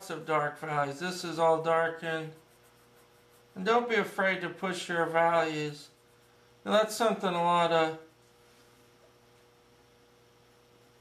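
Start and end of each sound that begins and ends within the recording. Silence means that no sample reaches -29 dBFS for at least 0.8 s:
3.66–5.69 s
6.68–7.91 s

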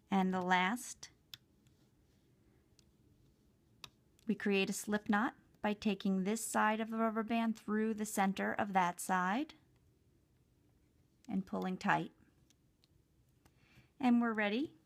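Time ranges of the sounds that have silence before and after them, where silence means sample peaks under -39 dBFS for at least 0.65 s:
3.84–9.50 s
11.30–12.07 s

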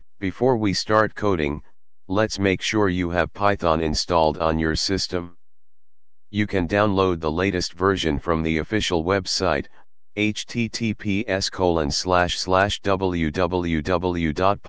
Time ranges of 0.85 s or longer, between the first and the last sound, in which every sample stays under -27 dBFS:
5.24–6.34 s

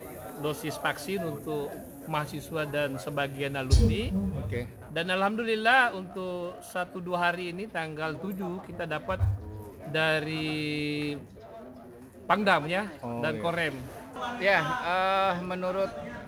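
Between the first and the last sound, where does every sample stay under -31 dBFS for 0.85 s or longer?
11.18–12.30 s

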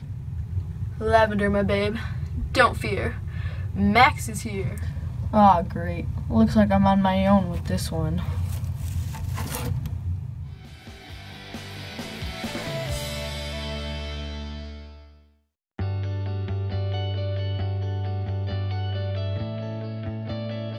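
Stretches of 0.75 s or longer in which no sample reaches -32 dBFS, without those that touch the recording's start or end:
14.82–15.79 s

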